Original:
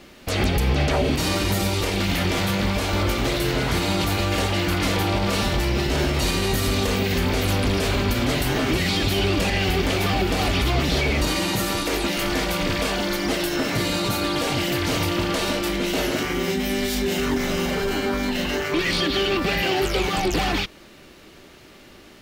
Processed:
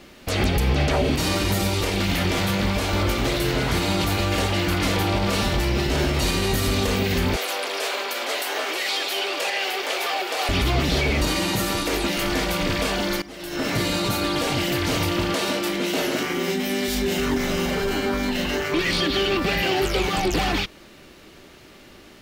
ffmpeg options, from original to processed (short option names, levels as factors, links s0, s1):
-filter_complex "[0:a]asettb=1/sr,asplit=3[s0][s1][s2];[s0]atrim=end=7.364[s3];[s1]atrim=start=7.36:end=10.49,asetpts=PTS-STARTPTS,afade=t=in:d=0.004:c=qsin,afade=t=out:st=3.126:d=0.004:c=qsin,highpass=f=470:w=0.5412,highpass=f=470:w=1.3066[s4];[s2]atrim=start=10.486[s5];[s3][s4]acrossfade=d=0.004:c1=hsin:c2=qsin[s6];[s6][s5]acrossfade=d=0.004:c1=qsin:c2=hsin,asettb=1/sr,asplit=3[s7][s8][s9];[s7]atrim=end=15.344[s10];[s8]atrim=start=15.34:end=16.88,asetpts=PTS-STARTPTS,afade=t=in:d=0.004:c=qsin,afade=t=out:st=1.536:d=0.004:c=qsin,highpass=160[s11];[s9]atrim=start=16.876[s12];[s10][s11]acrossfade=d=0.004:c1=hsin:c2=qsin[s13];[s13][s12]acrossfade=d=0.004:c1=qsin:c2=hsin,asplit=2[s14][s15];[s14]atrim=end=13.22,asetpts=PTS-STARTPTS,afade=t=out:st=13.216:d=0.004:c=hsin:silence=0.11885[s16];[s15]atrim=start=13.22,asetpts=PTS-STARTPTS,afade=t=in:d=0.45:c=qua:silence=0.11885[s17];[s16][s17]concat=n=2:v=0:a=1"